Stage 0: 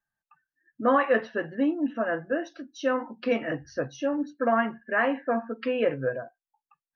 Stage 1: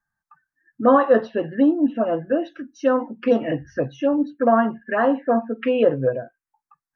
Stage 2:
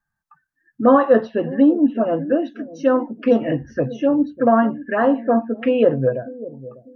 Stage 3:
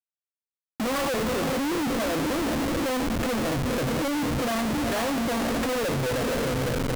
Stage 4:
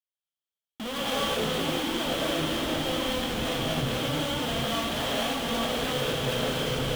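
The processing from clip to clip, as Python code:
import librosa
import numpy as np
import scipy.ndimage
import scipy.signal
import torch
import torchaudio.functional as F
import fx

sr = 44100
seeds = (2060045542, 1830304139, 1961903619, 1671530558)

y1 = fx.lowpass(x, sr, hz=3800.0, slope=6)
y1 = fx.env_phaser(y1, sr, low_hz=500.0, high_hz=2300.0, full_db=-21.5)
y1 = y1 * 10.0 ** (8.5 / 20.0)
y2 = fx.low_shelf(y1, sr, hz=390.0, db=5.0)
y2 = fx.echo_bbd(y2, sr, ms=597, stages=2048, feedback_pct=31, wet_db=-16.0)
y3 = fx.echo_diffused(y2, sr, ms=477, feedback_pct=51, wet_db=-12)
y3 = fx.schmitt(y3, sr, flips_db=-32.5)
y3 = y3 * 10.0 ** (-7.5 / 20.0)
y4 = fx.peak_eq(y3, sr, hz=3200.0, db=14.0, octaves=0.34)
y4 = fx.rev_gated(y4, sr, seeds[0], gate_ms=280, shape='rising', drr_db=-5.5)
y4 = y4 * 10.0 ** (-9.0 / 20.0)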